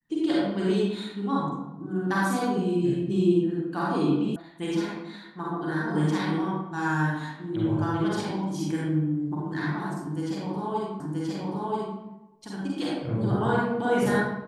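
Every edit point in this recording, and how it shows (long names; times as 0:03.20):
0:04.36: cut off before it has died away
0:11.00: the same again, the last 0.98 s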